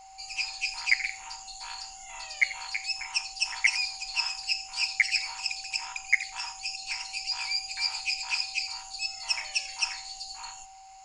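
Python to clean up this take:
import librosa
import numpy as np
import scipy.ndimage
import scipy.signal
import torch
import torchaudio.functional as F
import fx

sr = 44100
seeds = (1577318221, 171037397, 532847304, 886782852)

y = fx.notch(x, sr, hz=770.0, q=30.0)
y = fx.fix_echo_inverse(y, sr, delay_ms=86, level_db=-16.5)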